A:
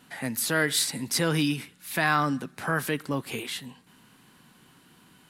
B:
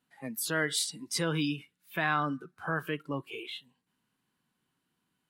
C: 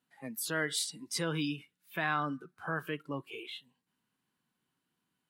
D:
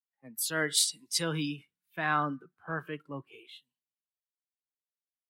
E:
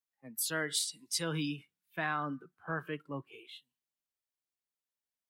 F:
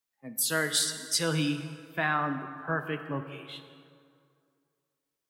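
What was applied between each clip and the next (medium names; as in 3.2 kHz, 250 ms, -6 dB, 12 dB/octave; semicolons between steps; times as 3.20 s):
spectral noise reduction 18 dB; trim -5 dB
bass shelf 60 Hz -6 dB; trim -3 dB
three bands expanded up and down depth 100%
compression 6:1, threshold -30 dBFS, peak gain reduction 9 dB
plate-style reverb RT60 2.3 s, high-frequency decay 0.6×, DRR 8 dB; trim +6 dB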